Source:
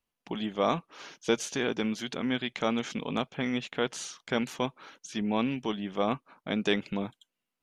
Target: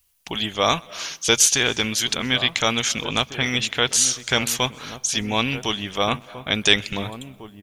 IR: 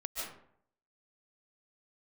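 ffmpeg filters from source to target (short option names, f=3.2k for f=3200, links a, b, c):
-filter_complex "[0:a]lowshelf=f=130:t=q:w=1.5:g=12.5,asplit=2[a][b];[b]adelay=1749,volume=-11dB,highshelf=f=4k:g=-39.4[c];[a][c]amix=inputs=2:normalize=0,asplit=2[d][e];[1:a]atrim=start_sample=2205,lowpass=7.7k,adelay=127[f];[e][f]afir=irnorm=-1:irlink=0,volume=-23.5dB[g];[d][g]amix=inputs=2:normalize=0,crystalizer=i=9:c=0,volume=3.5dB"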